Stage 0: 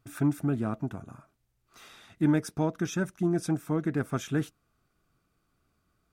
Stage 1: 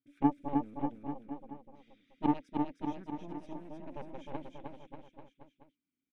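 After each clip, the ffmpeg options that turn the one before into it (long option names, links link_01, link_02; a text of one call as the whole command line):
ffmpeg -i in.wav -filter_complex "[0:a]asplit=3[link_01][link_02][link_03];[link_01]bandpass=frequency=270:width_type=q:width=8,volume=0dB[link_04];[link_02]bandpass=frequency=2290:width_type=q:width=8,volume=-6dB[link_05];[link_03]bandpass=frequency=3010:width_type=q:width=8,volume=-9dB[link_06];[link_04][link_05][link_06]amix=inputs=3:normalize=0,aeval=exprs='0.0841*(cos(1*acos(clip(val(0)/0.0841,-1,1)))-cos(1*PI/2))+0.0335*(cos(3*acos(clip(val(0)/0.0841,-1,1)))-cos(3*PI/2))+0.00335*(cos(6*acos(clip(val(0)/0.0841,-1,1)))-cos(6*PI/2))':channel_layout=same,aecho=1:1:310|589|840.1|1066|1269:0.631|0.398|0.251|0.158|0.1,volume=7.5dB" out.wav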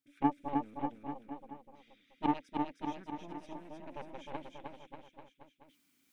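ffmpeg -i in.wav -af "tiltshelf=frequency=670:gain=-5,areverse,acompressor=mode=upward:threshold=-58dB:ratio=2.5,areverse" out.wav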